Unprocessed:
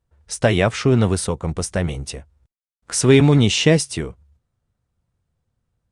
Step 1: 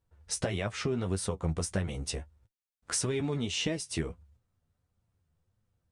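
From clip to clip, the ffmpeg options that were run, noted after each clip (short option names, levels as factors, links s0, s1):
-af "acompressor=threshold=0.0631:ratio=10,flanger=delay=9.2:depth=3.7:regen=33:speed=1.6:shape=triangular"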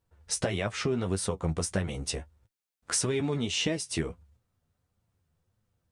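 -af "lowshelf=f=93:g=-5.5,volume=1.41"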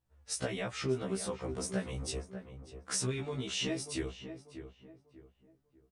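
-filter_complex "[0:a]asplit=2[s0][s1];[s1]adelay=593,lowpass=f=1600:p=1,volume=0.335,asplit=2[s2][s3];[s3]adelay=593,lowpass=f=1600:p=1,volume=0.34,asplit=2[s4][s5];[s5]adelay=593,lowpass=f=1600:p=1,volume=0.34,asplit=2[s6][s7];[s7]adelay=593,lowpass=f=1600:p=1,volume=0.34[s8];[s0][s2][s4][s6][s8]amix=inputs=5:normalize=0,afftfilt=real='re*1.73*eq(mod(b,3),0)':imag='im*1.73*eq(mod(b,3),0)':win_size=2048:overlap=0.75,volume=0.668"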